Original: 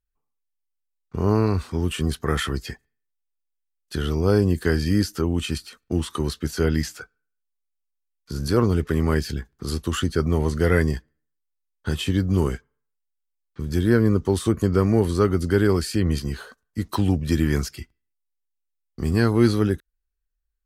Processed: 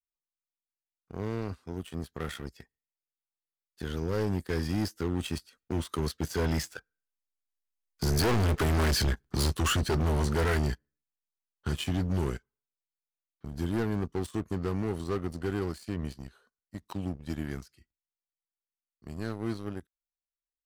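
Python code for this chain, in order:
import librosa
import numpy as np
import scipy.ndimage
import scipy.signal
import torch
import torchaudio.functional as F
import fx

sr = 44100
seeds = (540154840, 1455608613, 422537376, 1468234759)

y = fx.doppler_pass(x, sr, speed_mps=12, closest_m=7.8, pass_at_s=8.65)
y = fx.leveller(y, sr, passes=2)
y = np.clip(y, -10.0 ** (-25.0 / 20.0), 10.0 ** (-25.0 / 20.0))
y = F.gain(torch.from_numpy(y), 1.5).numpy()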